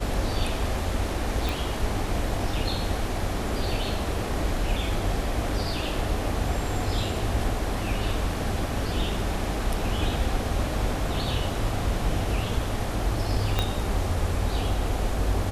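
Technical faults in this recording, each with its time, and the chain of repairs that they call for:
0:01.49: click
0:13.59: click −9 dBFS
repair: click removal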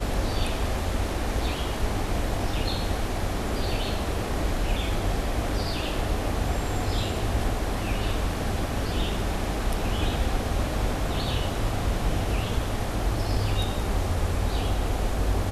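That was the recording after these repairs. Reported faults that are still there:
0:13.59: click

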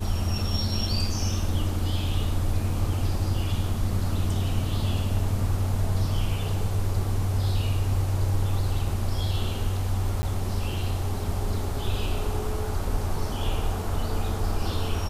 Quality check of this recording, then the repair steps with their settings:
0:10.22–0:10.23: drop-out 10 ms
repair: repair the gap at 0:10.22, 10 ms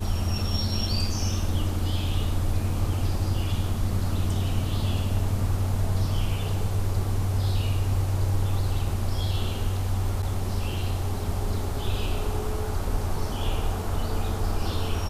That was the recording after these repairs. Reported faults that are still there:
none of them is left

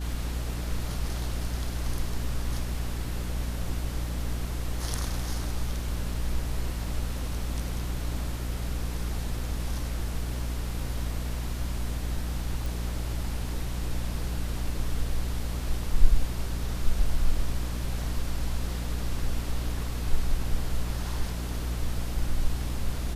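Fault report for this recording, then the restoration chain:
mains hum 60 Hz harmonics 5 −32 dBFS
0:12.66: click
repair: click removal
hum removal 60 Hz, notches 5

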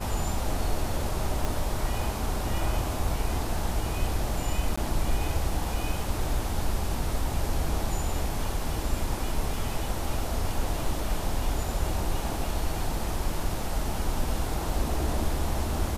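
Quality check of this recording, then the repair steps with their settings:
0:01.45: click
0:04.76–0:04.78: drop-out 15 ms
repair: click removal
repair the gap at 0:04.76, 15 ms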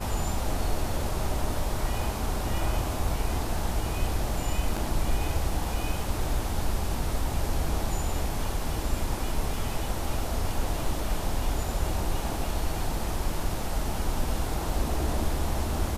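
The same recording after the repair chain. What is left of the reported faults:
0:01.45: click

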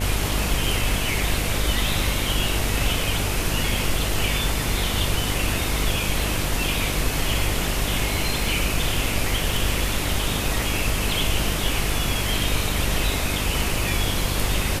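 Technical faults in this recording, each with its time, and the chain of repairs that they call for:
mains buzz 50 Hz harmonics 14 −28 dBFS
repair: hum removal 50 Hz, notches 14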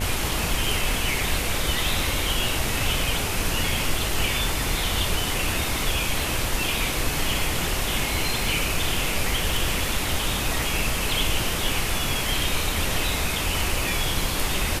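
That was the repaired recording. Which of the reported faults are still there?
none of them is left

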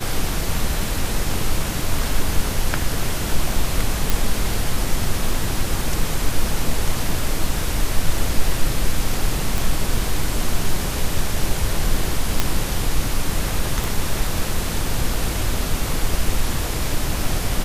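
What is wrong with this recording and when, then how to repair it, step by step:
0:04.10: click
0:09.58: click
0:12.40: click −2 dBFS
0:13.84: click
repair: click removal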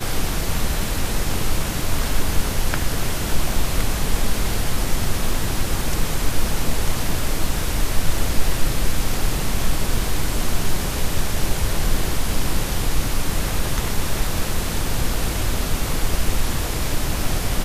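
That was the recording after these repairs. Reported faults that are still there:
none of them is left

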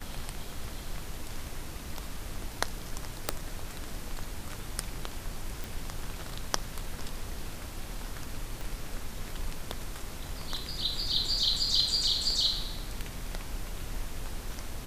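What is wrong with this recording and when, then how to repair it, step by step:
0:03.29: click −9 dBFS
0:05.64: click
0:08.61: click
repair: click removal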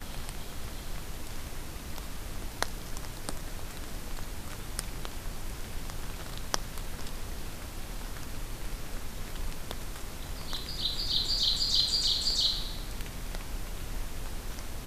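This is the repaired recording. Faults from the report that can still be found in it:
0:08.61: click

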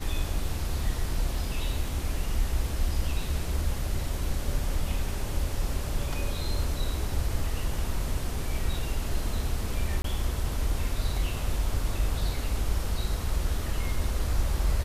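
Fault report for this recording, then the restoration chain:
0:10.02–0:10.04: drop-out 23 ms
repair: repair the gap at 0:10.02, 23 ms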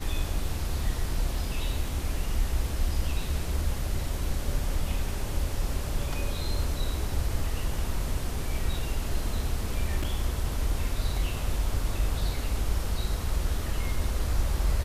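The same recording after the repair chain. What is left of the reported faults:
none of them is left

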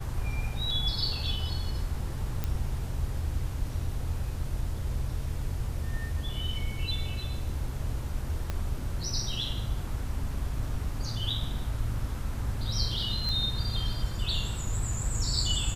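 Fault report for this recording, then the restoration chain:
0:02.44: click −17 dBFS
0:08.50: click −18 dBFS
0:13.29: click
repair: click removal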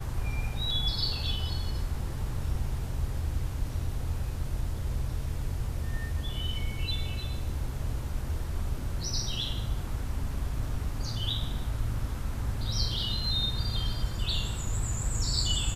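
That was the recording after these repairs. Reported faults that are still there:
0:08.50: click

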